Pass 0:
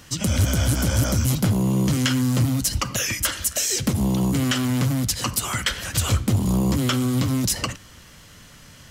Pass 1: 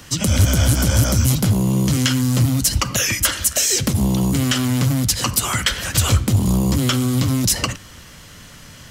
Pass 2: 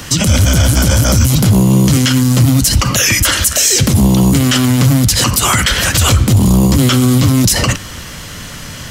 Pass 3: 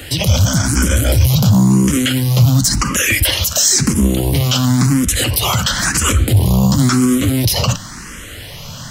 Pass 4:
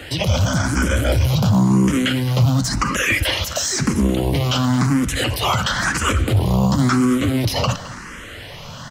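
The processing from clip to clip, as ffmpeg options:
-filter_complex "[0:a]acrossover=split=130|3000[a][b][c];[b]acompressor=threshold=-24dB:ratio=6[d];[a][d][c]amix=inputs=3:normalize=0,volume=5.5dB"
-af "alimiter=level_in=14dB:limit=-1dB:release=50:level=0:latency=1,volume=-1dB"
-filter_complex "[0:a]asplit=2[a][b];[b]afreqshift=0.96[c];[a][c]amix=inputs=2:normalize=1"
-filter_complex "[0:a]asplit=2[a][b];[b]highpass=f=720:p=1,volume=7dB,asoftclip=type=tanh:threshold=-1dB[c];[a][c]amix=inputs=2:normalize=0,lowpass=f=1.4k:p=1,volume=-6dB,asplit=2[d][e];[e]adelay=215.7,volume=-16dB,highshelf=f=4k:g=-4.85[f];[d][f]amix=inputs=2:normalize=0"

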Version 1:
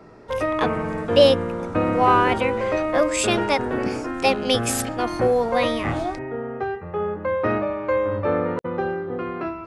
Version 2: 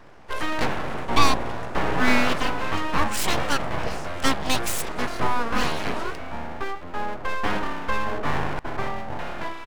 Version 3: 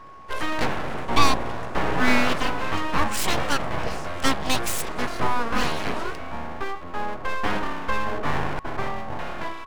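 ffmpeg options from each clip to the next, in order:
-filter_complex "[0:a]asplit=2[a][b];[b]adelay=291.5,volume=-26dB,highshelf=f=4k:g=-6.56[c];[a][c]amix=inputs=2:normalize=0,aeval=exprs='abs(val(0))':c=same"
-af "aeval=exprs='val(0)+0.00708*sin(2*PI*1100*n/s)':c=same"

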